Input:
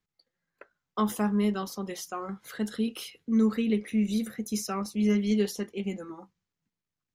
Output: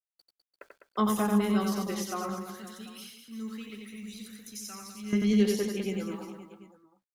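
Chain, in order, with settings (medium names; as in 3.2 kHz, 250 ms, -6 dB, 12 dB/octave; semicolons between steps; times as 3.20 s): 2.42–5.13 s: amplifier tone stack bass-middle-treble 5-5-5; bit crusher 11-bit; reverse bouncing-ball echo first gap 90 ms, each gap 1.25×, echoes 5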